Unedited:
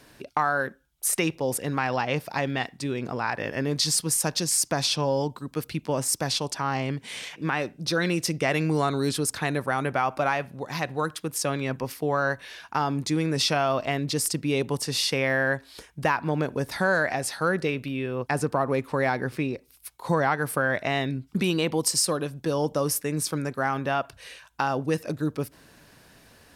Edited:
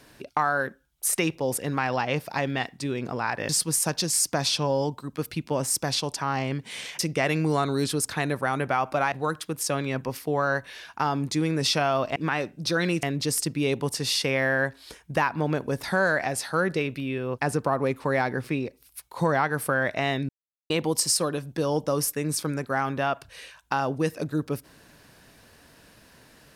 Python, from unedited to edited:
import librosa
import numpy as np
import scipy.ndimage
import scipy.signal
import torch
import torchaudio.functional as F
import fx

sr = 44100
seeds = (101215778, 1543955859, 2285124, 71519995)

y = fx.edit(x, sr, fx.cut(start_s=3.49, length_s=0.38),
    fx.move(start_s=7.37, length_s=0.87, to_s=13.91),
    fx.cut(start_s=10.37, length_s=0.5),
    fx.silence(start_s=21.17, length_s=0.41), tone=tone)